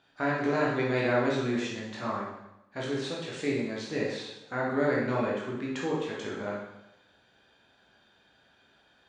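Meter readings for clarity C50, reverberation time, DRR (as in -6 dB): 1.0 dB, 0.90 s, -5.0 dB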